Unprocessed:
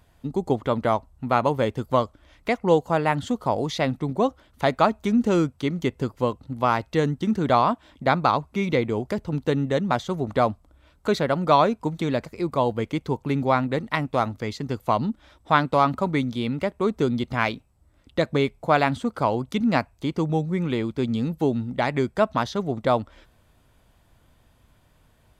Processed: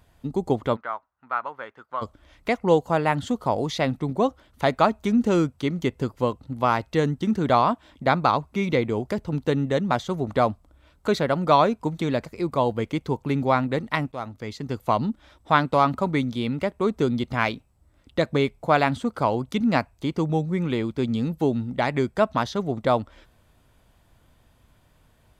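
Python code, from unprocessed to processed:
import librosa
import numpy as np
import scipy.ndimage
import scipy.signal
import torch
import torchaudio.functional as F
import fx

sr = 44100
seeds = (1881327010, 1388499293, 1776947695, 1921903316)

y = fx.bandpass_q(x, sr, hz=1400.0, q=2.8, at=(0.75, 2.01), fade=0.02)
y = fx.edit(y, sr, fx.fade_in_from(start_s=14.12, length_s=0.71, floor_db=-12.5), tone=tone)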